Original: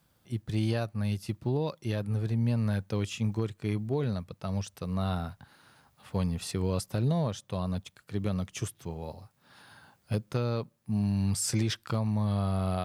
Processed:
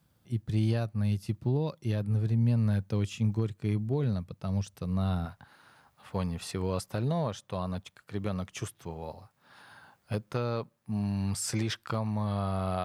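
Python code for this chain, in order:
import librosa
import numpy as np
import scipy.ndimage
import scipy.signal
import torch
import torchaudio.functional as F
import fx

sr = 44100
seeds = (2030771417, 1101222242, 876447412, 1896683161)

y = fx.peak_eq(x, sr, hz=fx.steps((0.0, 120.0), (5.26, 1100.0)), db=6.0, octaves=2.7)
y = y * librosa.db_to_amplitude(-3.5)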